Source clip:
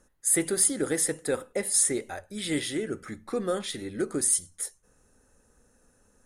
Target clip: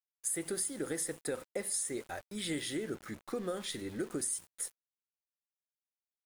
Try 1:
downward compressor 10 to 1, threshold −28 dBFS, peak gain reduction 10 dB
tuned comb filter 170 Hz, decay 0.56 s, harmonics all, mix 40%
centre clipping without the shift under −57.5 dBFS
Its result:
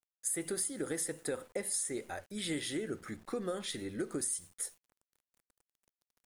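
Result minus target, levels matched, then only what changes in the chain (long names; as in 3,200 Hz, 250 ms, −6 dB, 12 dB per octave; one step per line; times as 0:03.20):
centre clipping without the shift: distortion −8 dB
change: centre clipping without the shift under −49 dBFS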